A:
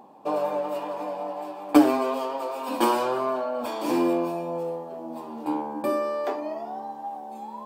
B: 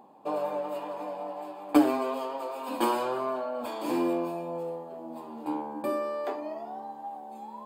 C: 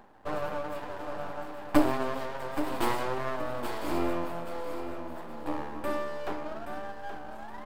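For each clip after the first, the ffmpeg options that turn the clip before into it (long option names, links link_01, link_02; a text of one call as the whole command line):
ffmpeg -i in.wav -af "bandreject=frequency=5700:width=5.1,volume=-4.5dB" out.wav
ffmpeg -i in.wav -filter_complex "[0:a]aeval=exprs='max(val(0),0)':channel_layout=same,asplit=2[link_01][link_02];[link_02]aecho=0:1:824|1648|2472:0.335|0.0971|0.0282[link_03];[link_01][link_03]amix=inputs=2:normalize=0,volume=2dB" out.wav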